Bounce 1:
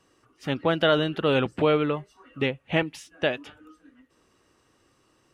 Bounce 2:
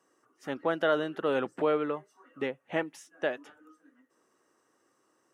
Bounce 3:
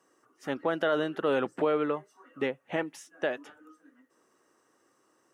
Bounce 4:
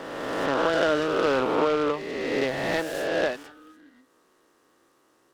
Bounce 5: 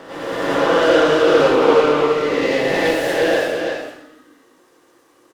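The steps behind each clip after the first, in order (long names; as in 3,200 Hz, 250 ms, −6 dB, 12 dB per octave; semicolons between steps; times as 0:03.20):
high-pass filter 280 Hz 12 dB per octave; flat-topped bell 3,300 Hz −8.5 dB 1.3 octaves; level −4.5 dB
brickwall limiter −19 dBFS, peak gain reduction 5.5 dB; level +2.5 dB
peak hold with a rise ahead of every peak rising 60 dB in 2.11 s; short delay modulated by noise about 1,700 Hz, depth 0.036 ms; level +1.5 dB
single-tap delay 334 ms −5 dB; dense smooth reverb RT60 0.74 s, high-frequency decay 1×, pre-delay 80 ms, DRR −9 dB; level −1.5 dB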